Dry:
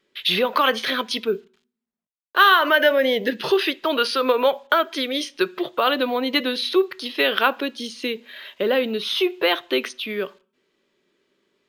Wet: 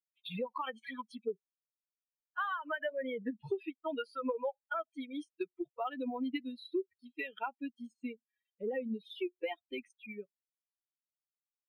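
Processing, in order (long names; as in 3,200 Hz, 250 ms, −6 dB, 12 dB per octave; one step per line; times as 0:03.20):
spectral dynamics exaggerated over time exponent 3
high shelf with overshoot 6,200 Hz +8 dB, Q 3
downward compressor 5 to 1, threshold −32 dBFS, peak gain reduction 16.5 dB
high-frequency loss of the air 470 metres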